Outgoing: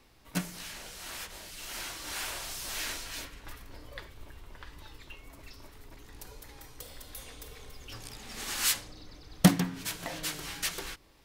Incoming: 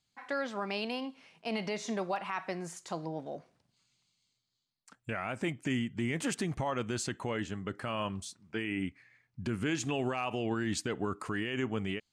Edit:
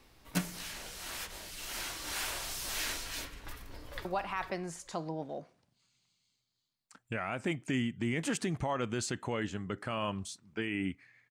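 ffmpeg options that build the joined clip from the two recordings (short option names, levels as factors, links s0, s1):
-filter_complex "[0:a]apad=whole_dur=11.3,atrim=end=11.3,atrim=end=4.052[s0];[1:a]atrim=start=2.018:end=9.27[s1];[s0][s1]acrossfade=d=0.004:c1=hsin:c2=hsin,asplit=2[s2][s3];[s3]afade=t=in:st=3.41:d=0.01,afade=t=out:st=4.05:d=0.01,aecho=0:1:450|900|1350:0.473151|0.0946303|0.0189261[s4];[s2][s4]amix=inputs=2:normalize=0"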